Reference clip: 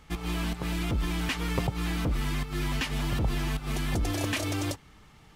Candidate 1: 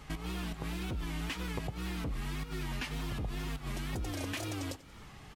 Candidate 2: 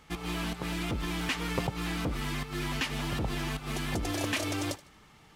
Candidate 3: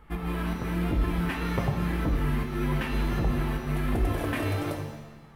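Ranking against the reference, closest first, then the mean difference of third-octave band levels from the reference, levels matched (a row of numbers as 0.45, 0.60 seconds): 2, 1, 3; 1.5, 3.0, 5.5 decibels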